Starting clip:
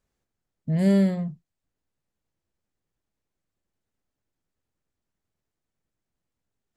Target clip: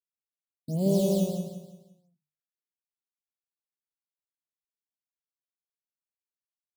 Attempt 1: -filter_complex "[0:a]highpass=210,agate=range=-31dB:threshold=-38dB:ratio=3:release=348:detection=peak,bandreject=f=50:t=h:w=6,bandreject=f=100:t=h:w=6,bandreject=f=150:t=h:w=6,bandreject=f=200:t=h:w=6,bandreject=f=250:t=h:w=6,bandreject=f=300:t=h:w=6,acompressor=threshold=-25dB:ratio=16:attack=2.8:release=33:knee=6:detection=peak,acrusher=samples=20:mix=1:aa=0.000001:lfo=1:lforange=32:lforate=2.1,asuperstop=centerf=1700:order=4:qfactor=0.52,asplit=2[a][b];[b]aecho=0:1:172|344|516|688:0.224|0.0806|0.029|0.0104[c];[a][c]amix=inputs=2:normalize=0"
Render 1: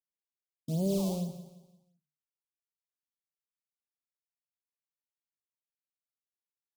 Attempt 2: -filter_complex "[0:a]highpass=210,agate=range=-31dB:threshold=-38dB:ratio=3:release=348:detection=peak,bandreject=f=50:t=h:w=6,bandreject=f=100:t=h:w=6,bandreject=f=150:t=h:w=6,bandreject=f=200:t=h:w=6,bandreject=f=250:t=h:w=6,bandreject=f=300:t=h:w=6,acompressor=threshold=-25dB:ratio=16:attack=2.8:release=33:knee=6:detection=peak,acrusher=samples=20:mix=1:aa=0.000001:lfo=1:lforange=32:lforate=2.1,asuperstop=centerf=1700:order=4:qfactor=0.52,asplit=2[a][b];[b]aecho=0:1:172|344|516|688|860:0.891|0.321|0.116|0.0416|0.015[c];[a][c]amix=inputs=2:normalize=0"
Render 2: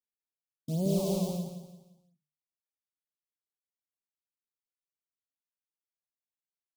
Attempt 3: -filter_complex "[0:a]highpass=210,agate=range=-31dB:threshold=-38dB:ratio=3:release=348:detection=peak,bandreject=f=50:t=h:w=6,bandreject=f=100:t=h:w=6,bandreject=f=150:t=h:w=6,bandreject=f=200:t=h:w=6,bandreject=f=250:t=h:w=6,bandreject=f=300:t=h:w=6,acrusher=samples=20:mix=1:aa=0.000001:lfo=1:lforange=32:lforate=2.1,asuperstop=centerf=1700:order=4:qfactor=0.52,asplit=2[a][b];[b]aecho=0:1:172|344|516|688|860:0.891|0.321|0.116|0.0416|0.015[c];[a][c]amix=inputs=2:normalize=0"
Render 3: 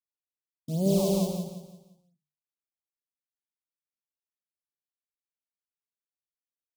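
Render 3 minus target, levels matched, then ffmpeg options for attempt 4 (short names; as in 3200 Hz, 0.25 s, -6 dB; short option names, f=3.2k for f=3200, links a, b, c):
decimation with a swept rate: distortion +8 dB
-filter_complex "[0:a]highpass=210,agate=range=-31dB:threshold=-38dB:ratio=3:release=348:detection=peak,bandreject=f=50:t=h:w=6,bandreject=f=100:t=h:w=6,bandreject=f=150:t=h:w=6,bandreject=f=200:t=h:w=6,bandreject=f=250:t=h:w=6,bandreject=f=300:t=h:w=6,acrusher=samples=8:mix=1:aa=0.000001:lfo=1:lforange=12.8:lforate=2.1,asuperstop=centerf=1700:order=4:qfactor=0.52,asplit=2[a][b];[b]aecho=0:1:172|344|516|688|860:0.891|0.321|0.116|0.0416|0.015[c];[a][c]amix=inputs=2:normalize=0"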